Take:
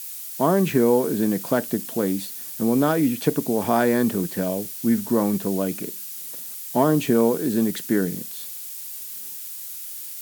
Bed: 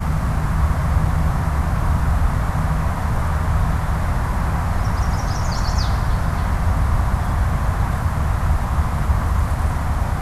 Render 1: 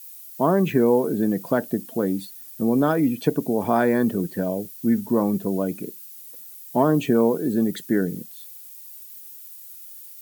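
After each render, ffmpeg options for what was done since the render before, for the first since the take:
-af "afftdn=nr=12:nf=-35"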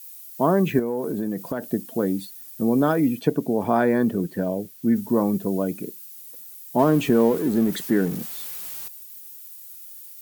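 -filter_complex "[0:a]asettb=1/sr,asplit=3[a][b][c];[a]atrim=end=0.794[d];[b]atrim=start=0.79:end=1.63,asetpts=PTS-STARTPTS,afade=t=in:d=0.004:c=qsin,afade=t=out:st=0.836:d=0.004:c=qsin,acompressor=threshold=-22dB:ratio=6:attack=3.2:release=140:knee=1:detection=peak[e];[c]atrim=start=1.626[f];[d][e]acrossfade=d=0.004:c1=hsin:c2=qsin[g];[g][f]acrossfade=d=0.004:c1=qsin:c2=hsin,asettb=1/sr,asplit=3[h][i][j];[h]atrim=end=3.194[k];[i]atrim=start=3.19:end=4.96,asetpts=PTS-STARTPTS,afade=t=in:d=0.004:c=qsin,afade=t=out:st=1.766:d=0.004:c=qsin,highshelf=f=4.3k:g=-6[l];[j]atrim=start=4.956[m];[k][l]acrossfade=d=0.004:c1=hsin:c2=qsin[n];[n][m]acrossfade=d=0.004:c1=qsin:c2=hsin,asettb=1/sr,asplit=3[o][p][q];[o]atrim=end=6.794[r];[p]atrim=start=6.79:end=8.88,asetpts=PTS-STARTPTS,afade=t=in:d=0.004:c=qsin,afade=t=out:st=2.086:d=0.004:c=qsin,aeval=exprs='val(0)+0.5*0.0251*sgn(val(0))':c=same[s];[q]atrim=start=8.876[t];[r][s]acrossfade=d=0.004:c1=hsin:c2=qsin[u];[u][t]acrossfade=d=0.004:c1=qsin:c2=hsin"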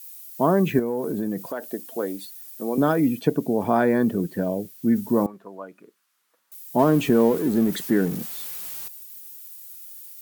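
-filter_complex "[0:a]asettb=1/sr,asplit=3[a][b][c];[a]atrim=end=1.464[d];[b]atrim=start=1.46:end=2.78,asetpts=PTS-STARTPTS,afade=t=in:d=0.004:c=qsin,afade=t=out:st=1.316:d=0.004:c=qsin,highpass=400[e];[c]atrim=start=2.776[f];[d][e]acrossfade=d=0.004:c1=hsin:c2=qsin[g];[g][f]acrossfade=d=0.004:c1=qsin:c2=hsin,asettb=1/sr,asplit=3[h][i][j];[h]atrim=end=5.264[k];[i]atrim=start=5.26:end=6.52,asetpts=PTS-STARTPTS,afade=t=in:d=0.004:c=qsin,afade=t=out:st=1.256:d=0.004:c=qsin,bandpass=f=1.2k:t=q:w=2.1[l];[j]atrim=start=6.516[m];[k][l]acrossfade=d=0.004:c1=hsin:c2=qsin[n];[n][m]acrossfade=d=0.004:c1=qsin:c2=hsin"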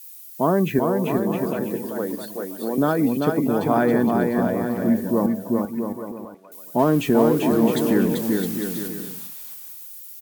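-af "aecho=1:1:390|663|854.1|987.9|1082:0.631|0.398|0.251|0.158|0.1"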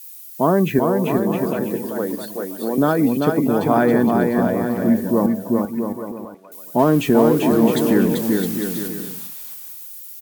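-af "volume=3dB,alimiter=limit=-3dB:level=0:latency=1"

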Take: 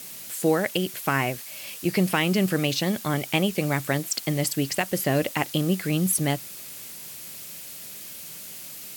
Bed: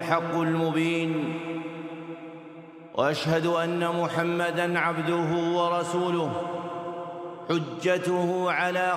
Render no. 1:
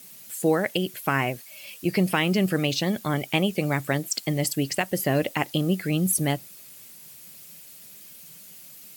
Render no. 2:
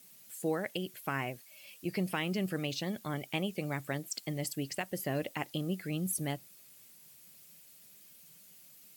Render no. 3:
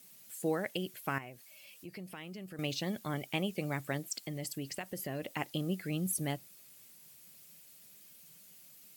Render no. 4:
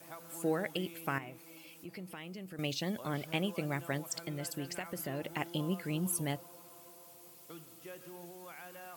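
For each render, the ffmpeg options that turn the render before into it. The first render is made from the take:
-af "afftdn=nr=9:nf=-40"
-af "volume=-11dB"
-filter_complex "[0:a]asettb=1/sr,asplit=3[a][b][c];[a]atrim=end=1.184[d];[b]atrim=start=1.18:end=2.59,asetpts=PTS-STARTPTS,afade=t=in:d=0.004:c=qsin,afade=t=out:st=1.406:d=0.004:c=qsin,acompressor=threshold=-52dB:ratio=2:attack=3.2:release=140:knee=1:detection=peak[e];[c]atrim=start=2.586[f];[d][e]acrossfade=d=0.004:c1=hsin:c2=qsin[g];[g][f]acrossfade=d=0.004:c1=qsin:c2=hsin,asettb=1/sr,asplit=3[h][i][j];[h]atrim=end=4.154[k];[i]atrim=start=4.15:end=5.34,asetpts=PTS-STARTPTS,afade=t=in:d=0.004:c=qsin,afade=t=out:st=1.186:d=0.004:c=qsin,acompressor=threshold=-36dB:ratio=2.5:attack=3.2:release=140:knee=1:detection=peak[l];[j]atrim=start=5.336[m];[k][l]acrossfade=d=0.004:c1=hsin:c2=qsin[n];[n][m]acrossfade=d=0.004:c1=qsin:c2=hsin"
-filter_complex "[1:a]volume=-25dB[a];[0:a][a]amix=inputs=2:normalize=0"

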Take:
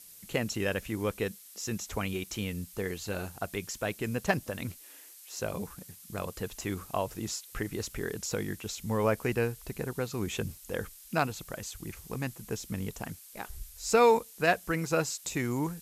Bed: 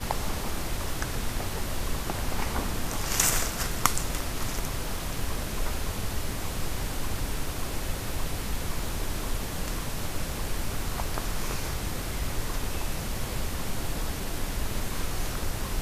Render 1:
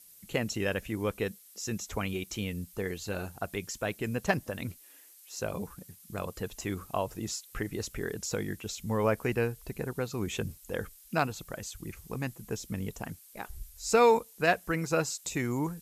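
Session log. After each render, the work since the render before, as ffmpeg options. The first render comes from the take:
-af "afftdn=nr=6:nf=-52"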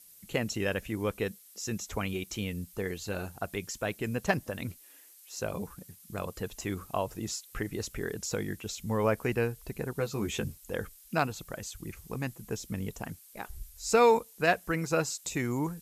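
-filter_complex "[0:a]asettb=1/sr,asplit=3[a][b][c];[a]atrim=end=9.974[d];[b]atrim=start=9.97:end=10.5,asetpts=PTS-STARTPTS,afade=t=in:d=0.004:c=qsin,afade=t=out:st=0.526:d=0.004:c=qsin,asplit=2[e][f];[f]adelay=14,volume=-5dB[g];[e][g]amix=inputs=2:normalize=0,atrim=end_sample=23373[h];[c]atrim=start=10.496[i];[d][h]acrossfade=d=0.004:c1=hsin:c2=qsin[j];[j][i]acrossfade=d=0.004:c1=qsin:c2=hsin"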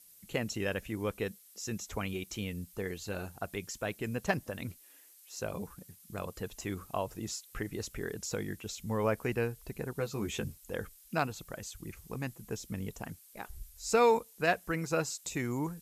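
-af "volume=-3dB"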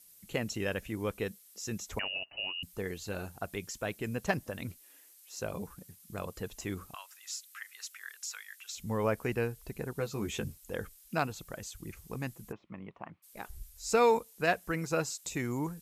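-filter_complex "[0:a]asettb=1/sr,asplit=3[a][b][c];[a]atrim=end=1.994[d];[b]atrim=start=1.99:end=2.63,asetpts=PTS-STARTPTS,afade=t=in:d=0.004:c=qsin,afade=t=out:st=0.636:d=0.004:c=qsin,lowpass=f=2.6k:t=q:w=0.5098,lowpass=f=2.6k:t=q:w=0.6013,lowpass=f=2.6k:t=q:w=0.9,lowpass=f=2.6k:t=q:w=2.563,afreqshift=-3000[e];[c]atrim=start=2.626[f];[d][e]acrossfade=d=0.004:c1=hsin:c2=qsin[g];[g][f]acrossfade=d=0.004:c1=qsin:c2=hsin,asettb=1/sr,asplit=3[h][i][j];[h]atrim=end=6.944[k];[i]atrim=start=6.94:end=8.74,asetpts=PTS-STARTPTS,afade=t=in:d=0.004:c=qsin,afade=t=out:st=1.796:d=0.004:c=qsin,highpass=f=1.3k:w=0.5412,highpass=f=1.3k:w=1.3066[l];[j]atrim=start=8.736[m];[k][l]acrossfade=d=0.004:c1=hsin:c2=qsin[n];[n][m]acrossfade=d=0.004:c1=qsin:c2=hsin,asplit=3[o][p][q];[o]afade=t=out:st=12.51:d=0.02[r];[p]highpass=220,equalizer=f=250:t=q:w=4:g=-8,equalizer=f=450:t=q:w=4:g=-9,equalizer=f=1.1k:t=q:w=4:g=8,equalizer=f=1.6k:t=q:w=4:g=-8,lowpass=f=2.3k:w=0.5412,lowpass=f=2.3k:w=1.3066,afade=t=in:st=12.51:d=0.02,afade=t=out:st=13.22:d=0.02[s];[q]afade=t=in:st=13.22:d=0.02[t];[r][s][t]amix=inputs=3:normalize=0"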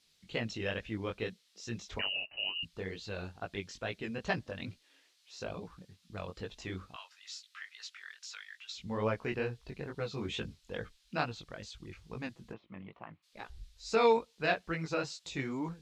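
-af "flanger=delay=17:depth=5.2:speed=2.3,lowpass=f=4k:t=q:w=2"

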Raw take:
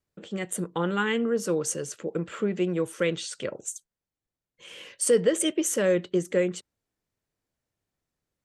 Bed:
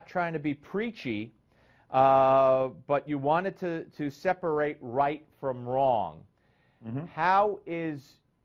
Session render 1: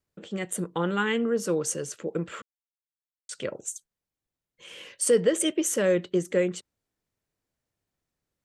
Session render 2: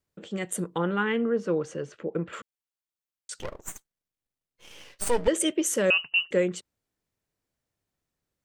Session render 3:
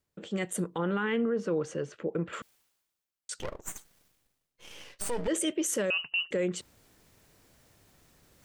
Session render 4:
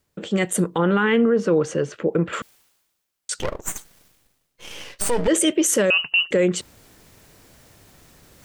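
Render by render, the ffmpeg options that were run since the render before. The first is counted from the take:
-filter_complex "[0:a]asplit=3[a][b][c];[a]atrim=end=2.42,asetpts=PTS-STARTPTS,afade=t=out:st=2.416:d=0.004:c=hsin[d];[b]atrim=start=2.42:end=3.29,asetpts=PTS-STARTPTS,volume=0[e];[c]atrim=start=3.29,asetpts=PTS-STARTPTS,afade=t=in:d=0.004:c=hsin[f];[d][e][f]concat=n=3:v=0:a=1"
-filter_complex "[0:a]asettb=1/sr,asplit=3[a][b][c];[a]atrim=end=0.784[d];[b]atrim=start=0.78:end=2.33,asetpts=PTS-STARTPTS,afade=t=in:d=0.004:c=qsin,afade=t=out:st=1.546:d=0.004:c=qsin,lowpass=2.6k[e];[c]atrim=start=2.326[f];[d][e]acrossfade=d=0.004:c1=hsin:c2=qsin[g];[g][f]acrossfade=d=0.004:c1=qsin:c2=hsin,asettb=1/sr,asplit=3[h][i][j];[h]atrim=end=3.394[k];[i]atrim=start=3.39:end=5.28,asetpts=PTS-STARTPTS,afade=t=in:d=0.004:c=qsin,afade=t=out:st=1.886:d=0.004:c=qsin,aeval=exprs='max(val(0),0)':c=same[l];[j]atrim=start=5.276[m];[k][l]acrossfade=d=0.004:c1=hsin:c2=qsin[n];[n][m]acrossfade=d=0.004:c1=qsin:c2=hsin,asettb=1/sr,asplit=3[o][p][q];[o]atrim=end=5.904[r];[p]atrim=start=5.9:end=6.31,asetpts=PTS-STARTPTS,afade=t=in:d=0.004:c=qsin,afade=t=out:st=0.406:d=0.004:c=qsin,lowpass=f=2.6k:t=q:w=0.5098,lowpass=f=2.6k:t=q:w=0.6013,lowpass=f=2.6k:t=q:w=0.9,lowpass=f=2.6k:t=q:w=2.563,afreqshift=-3100[s];[q]atrim=start=6.306[t];[r][s]acrossfade=d=0.004:c1=hsin:c2=qsin[u];[u][t]acrossfade=d=0.004:c1=qsin:c2=hsin"
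-af "alimiter=limit=-21.5dB:level=0:latency=1:release=32,areverse,acompressor=mode=upward:threshold=-43dB:ratio=2.5,areverse"
-af "volume=11dB"

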